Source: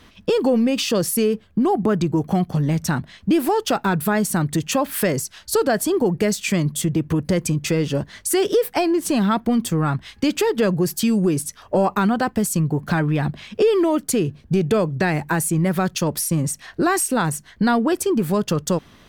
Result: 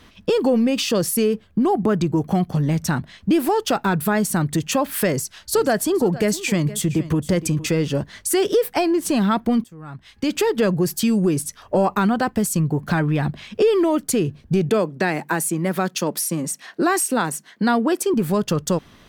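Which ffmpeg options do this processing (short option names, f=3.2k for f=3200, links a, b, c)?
-filter_complex "[0:a]asettb=1/sr,asplit=3[a][b][c];[a]atrim=end=5.104[d];[b]atrim=start=5.1:end=7.75,asetpts=PTS-STARTPTS,afade=t=in:d=0.004:c=qsin,afade=t=out:st=2.646:d=0.004:c=qsin,aecho=1:1:466:0.158,atrim=end_sample=116865[e];[c]atrim=start=7.746[f];[d][e]acrossfade=d=0.004:c1=hsin:c2=qsin[g];[g][f]acrossfade=d=0.004:c1=qsin:c2=hsin,asettb=1/sr,asplit=3[h][i][j];[h]atrim=end=14.694[k];[i]atrim=start=14.69:end=18.14,asetpts=PTS-STARTPTS,afade=t=in:d=0.004:c=qsin,afade=t=out:st=3.446:d=0.004:c=qsin,highpass=f=190:w=0.5412,highpass=f=190:w=1.3066[l];[j]atrim=start=18.136[m];[k][l]acrossfade=d=0.004:c1=hsin:c2=qsin[n];[n][m]acrossfade=d=0.004:c1=qsin:c2=hsin,asplit=2[o][p];[o]atrim=end=9.64,asetpts=PTS-STARTPTS,afade=t=out:st=9.636:d=0.004:c=hsin:silence=0.0707946[q];[p]atrim=start=9.64,asetpts=PTS-STARTPTS,afade=t=in:d=0.73:c=qua:silence=0.0707946[r];[q][r]concat=n=2:v=0:a=1"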